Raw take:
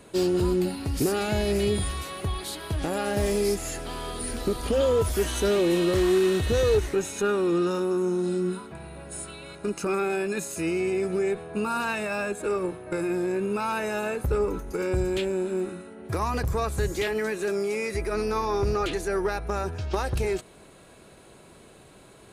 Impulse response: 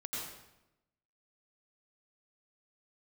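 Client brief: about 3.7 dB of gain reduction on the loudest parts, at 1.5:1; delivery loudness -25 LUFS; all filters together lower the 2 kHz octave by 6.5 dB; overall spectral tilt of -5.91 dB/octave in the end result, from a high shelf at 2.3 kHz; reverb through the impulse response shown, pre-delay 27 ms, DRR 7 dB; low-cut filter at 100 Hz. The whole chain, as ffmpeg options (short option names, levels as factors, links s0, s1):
-filter_complex "[0:a]highpass=100,equalizer=f=2000:t=o:g=-6,highshelf=f=2300:g=-5.5,acompressor=threshold=0.0316:ratio=1.5,asplit=2[s0][s1];[1:a]atrim=start_sample=2205,adelay=27[s2];[s1][s2]afir=irnorm=-1:irlink=0,volume=0.376[s3];[s0][s3]amix=inputs=2:normalize=0,volume=1.78"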